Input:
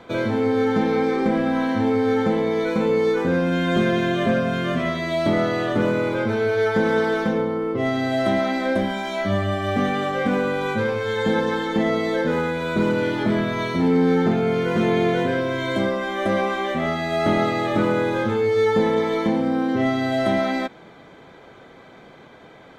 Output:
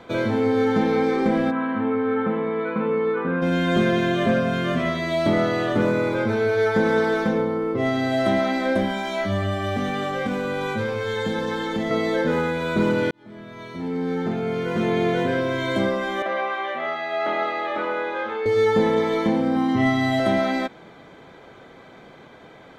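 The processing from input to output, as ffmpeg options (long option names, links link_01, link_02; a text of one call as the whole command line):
ffmpeg -i in.wav -filter_complex "[0:a]asplit=3[link_01][link_02][link_03];[link_01]afade=type=out:start_time=1.5:duration=0.02[link_04];[link_02]highpass=180,equalizer=frequency=320:width_type=q:width=4:gain=-6,equalizer=frequency=530:width_type=q:width=4:gain=-5,equalizer=frequency=760:width_type=q:width=4:gain=-7,equalizer=frequency=1200:width_type=q:width=4:gain=6,equalizer=frequency=2000:width_type=q:width=4:gain=-5,lowpass=frequency=2500:width=0.5412,lowpass=frequency=2500:width=1.3066,afade=type=in:start_time=1.5:duration=0.02,afade=type=out:start_time=3.41:duration=0.02[link_05];[link_03]afade=type=in:start_time=3.41:duration=0.02[link_06];[link_04][link_05][link_06]amix=inputs=3:normalize=0,asettb=1/sr,asplit=3[link_07][link_08][link_09];[link_07]atrim=end=5.834[link_10];[link_08]atrim=start=5.83:end=7.82,asetpts=PTS-STARTPTS,afade=type=in:duration=0.004:curve=qsin,afade=type=out:start_time=1.986:duration=0.004:curve=qsin,bandreject=frequency=3000:width=12[link_11];[link_09]atrim=start=7.816[link_12];[link_10][link_11]acrossfade=duration=0.004:curve1=hsin:curve2=qsin[link_13];[link_13][link_12]acrossfade=duration=0.004:curve1=qsin:curve2=hsin,asettb=1/sr,asplit=3[link_14][link_15][link_16];[link_14]atrim=end=9.244[link_17];[link_15]atrim=start=9.24:end=11.91,asetpts=PTS-STARTPTS,afade=type=in:duration=0.004:curve=qsin,afade=type=out:start_time=2.666:duration=0.004:curve=qsin,acrossover=split=130|3000[link_18][link_19][link_20];[link_19]acompressor=threshold=-22dB:ratio=6:attack=3.2:release=140:knee=2.83:detection=peak[link_21];[link_18][link_21][link_20]amix=inputs=3:normalize=0[link_22];[link_16]atrim=start=11.906[link_23];[link_17][link_22]acrossfade=duration=0.004:curve1=hsin:curve2=qsin[link_24];[link_24][link_23]acrossfade=duration=0.004:curve1=qsin:curve2=hsin,asettb=1/sr,asplit=3[link_25][link_26][link_27];[link_25]atrim=end=16.224[link_28];[link_26]atrim=start=16.22:end=18.46,asetpts=PTS-STARTPTS,afade=type=in:duration=0.004:curve=qsin,afade=type=out:start_time=2.236:duration=0.004:curve=qsin,highpass=600,lowpass=3000[link_29];[link_27]atrim=start=18.456[link_30];[link_28][link_29]acrossfade=duration=0.004:curve1=hsin:curve2=qsin[link_31];[link_31][link_30]acrossfade=duration=0.004:curve1=qsin:curve2=hsin,asettb=1/sr,asplit=3[link_32][link_33][link_34];[link_32]atrim=end=19.564[link_35];[link_33]atrim=start=19.56:end=20.2,asetpts=PTS-STARTPTS,afade=type=in:duration=0.004:curve=qsin,afade=type=out:start_time=0.636:duration=0.004:curve=qsin,aecho=1:1:1:0.7,atrim=end_sample=28224[link_36];[link_34]atrim=start=20.196[link_37];[link_35][link_36]acrossfade=duration=0.004:curve1=hsin:curve2=qsin[link_38];[link_38][link_37]acrossfade=duration=0.004:curve1=qsin:curve2=hsin,asplit=2[link_39][link_40];[link_39]atrim=end=13.11,asetpts=PTS-STARTPTS,afade=type=out:start_time=13.106:duration=0.004:curve=hsin[link_41];[link_40]atrim=start=13.11,asetpts=PTS-STARTPTS,afade=type=in:duration=2.35[link_42];[link_41][link_42]concat=n=2:v=0:a=1" out.wav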